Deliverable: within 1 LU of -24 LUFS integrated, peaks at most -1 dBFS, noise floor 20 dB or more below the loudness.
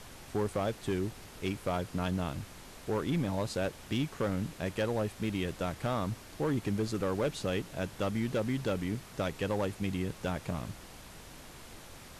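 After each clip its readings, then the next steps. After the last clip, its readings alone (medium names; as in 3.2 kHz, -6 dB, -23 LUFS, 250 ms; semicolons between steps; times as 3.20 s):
clipped samples 1.5%; clipping level -25.0 dBFS; noise floor -50 dBFS; noise floor target -55 dBFS; loudness -34.5 LUFS; peak level -25.0 dBFS; loudness target -24.0 LUFS
-> clip repair -25 dBFS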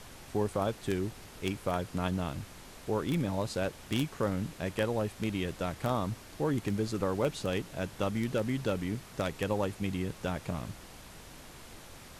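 clipped samples 0.0%; noise floor -50 dBFS; noise floor target -54 dBFS
-> noise print and reduce 6 dB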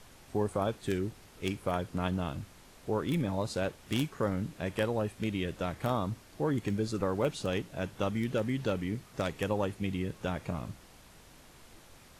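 noise floor -56 dBFS; loudness -33.5 LUFS; peak level -16.0 dBFS; loudness target -24.0 LUFS
-> trim +9.5 dB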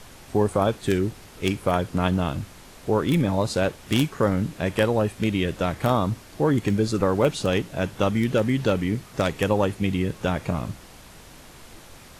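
loudness -24.0 LUFS; peak level -6.5 dBFS; noise floor -47 dBFS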